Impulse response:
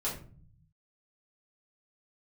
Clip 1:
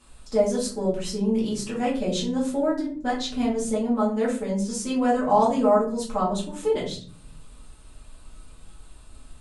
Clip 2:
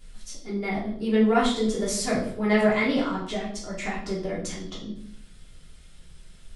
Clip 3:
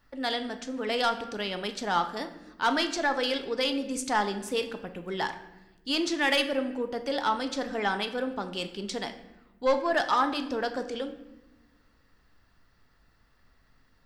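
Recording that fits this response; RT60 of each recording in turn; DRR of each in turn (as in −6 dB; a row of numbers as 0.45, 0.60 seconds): 1; 0.45 s, 0.60 s, non-exponential decay; −8.0, −6.5, 7.0 decibels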